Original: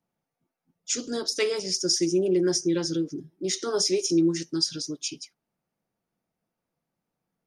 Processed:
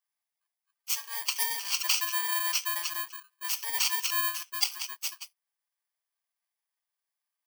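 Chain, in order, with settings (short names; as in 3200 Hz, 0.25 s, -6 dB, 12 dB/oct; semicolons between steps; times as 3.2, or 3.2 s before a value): FFT order left unsorted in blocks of 32 samples; HPF 930 Hz 24 dB/oct; gain -1.5 dB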